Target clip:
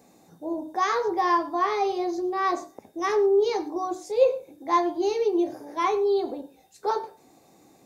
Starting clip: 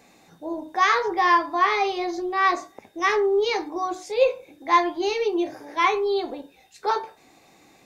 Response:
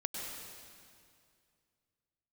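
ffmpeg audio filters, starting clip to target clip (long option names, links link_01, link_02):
-filter_complex "[0:a]highpass=frequency=95:poles=1,equalizer=frequency=2400:width=0.59:gain=-13.5,asplit=2[link_01][link_02];[1:a]atrim=start_sample=2205,afade=type=out:start_time=0.17:duration=0.01,atrim=end_sample=7938[link_03];[link_02][link_03]afir=irnorm=-1:irlink=0,volume=-10dB[link_04];[link_01][link_04]amix=inputs=2:normalize=0"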